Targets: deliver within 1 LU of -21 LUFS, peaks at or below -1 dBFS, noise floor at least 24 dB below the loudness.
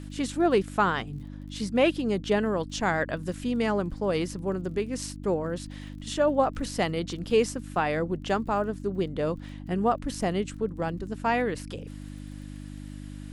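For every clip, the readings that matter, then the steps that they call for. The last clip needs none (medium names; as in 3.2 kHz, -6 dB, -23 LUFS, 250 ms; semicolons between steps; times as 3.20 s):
tick rate 22 per s; hum 50 Hz; highest harmonic 300 Hz; hum level -38 dBFS; loudness -28.0 LUFS; peak level -10.0 dBFS; loudness target -21.0 LUFS
-> de-click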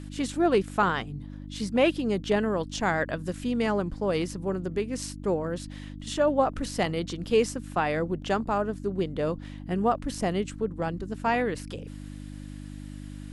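tick rate 0 per s; hum 50 Hz; highest harmonic 300 Hz; hum level -38 dBFS
-> de-hum 50 Hz, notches 6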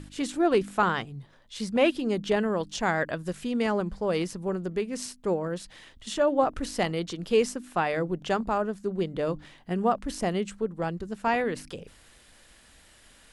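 hum not found; loudness -28.5 LUFS; peak level -11.0 dBFS; loudness target -21.0 LUFS
-> trim +7.5 dB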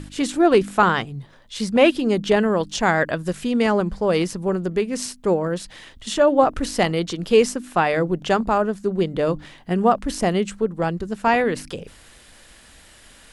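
loudness -21.0 LUFS; peak level -3.5 dBFS; noise floor -49 dBFS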